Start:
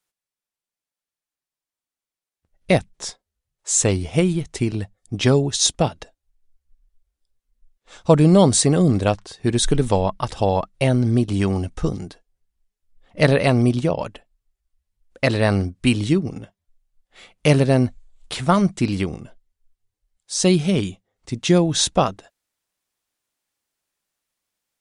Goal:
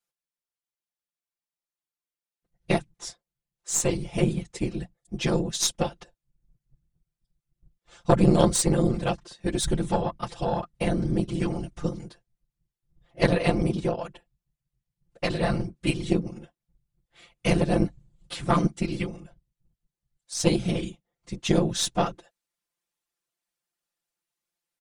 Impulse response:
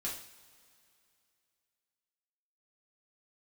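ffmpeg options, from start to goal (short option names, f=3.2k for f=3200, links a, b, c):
-af "afftfilt=real='hypot(re,im)*cos(2*PI*random(0))':imag='hypot(re,im)*sin(2*PI*random(1))':win_size=512:overlap=0.75,aecho=1:1:5.8:0.9,aeval=exprs='0.75*(cos(1*acos(clip(val(0)/0.75,-1,1)))-cos(1*PI/2))+0.266*(cos(2*acos(clip(val(0)/0.75,-1,1)))-cos(2*PI/2))+0.0596*(cos(3*acos(clip(val(0)/0.75,-1,1)))-cos(3*PI/2))':c=same,volume=-1.5dB"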